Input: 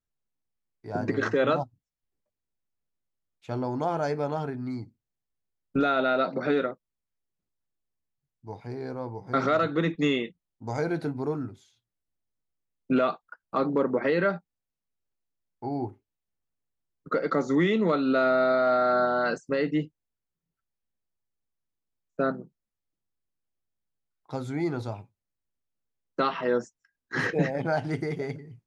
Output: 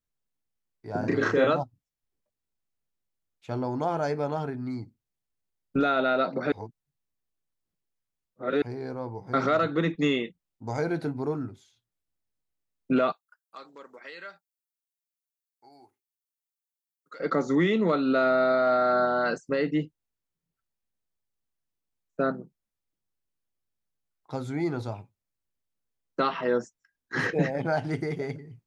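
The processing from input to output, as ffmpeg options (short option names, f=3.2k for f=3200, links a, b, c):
-filter_complex "[0:a]asettb=1/sr,asplit=3[a][b][c];[a]atrim=end=1.004[d];[b]atrim=start=1:end=1.47,asetpts=PTS-STARTPTS,afade=t=in:d=0.004:c=qsin,afade=t=out:st=0.466:d=0.004:c=qsin,asplit=2[e][f];[f]adelay=34,volume=-2dB[g];[e][g]amix=inputs=2:normalize=0,atrim=end_sample=20727[h];[c]atrim=start=1.466[i];[d][h]acrossfade=d=0.004:c1=hsin:c2=qsin[j];[j][i]acrossfade=d=0.004:c1=qsin:c2=hsin,asettb=1/sr,asplit=3[k][l][m];[k]atrim=end=13.124[n];[l]atrim=start=13.12:end=17.2,asetpts=PTS-STARTPTS,afade=t=in:d=0.004:c=qsin,afade=t=out:st=4.076:d=0.004:c=qsin,aderivative[o];[m]atrim=start=17.196[p];[n][o]acrossfade=d=0.004:c1=hsin:c2=qsin[q];[q][p]acrossfade=d=0.004:c1=qsin:c2=hsin,asplit=3[r][s][t];[r]atrim=end=6.522[u];[s]atrim=start=6.518:end=8.622,asetpts=PTS-STARTPTS,areverse[v];[t]atrim=start=8.618[w];[u][v]acrossfade=d=0.004:c1=hsin:c2=hsin[x];[x][w]acrossfade=d=0.004:c1=hsin:c2=hsin"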